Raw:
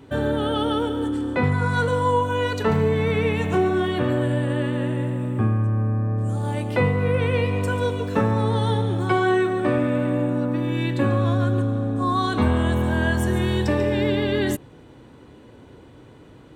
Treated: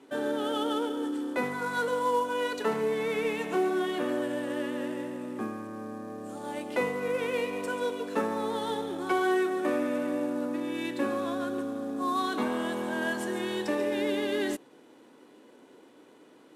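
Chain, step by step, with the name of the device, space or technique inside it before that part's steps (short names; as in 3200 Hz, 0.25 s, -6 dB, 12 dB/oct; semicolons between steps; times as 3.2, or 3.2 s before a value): early wireless headset (HPF 240 Hz 24 dB/oct; CVSD 64 kbps); gain -6 dB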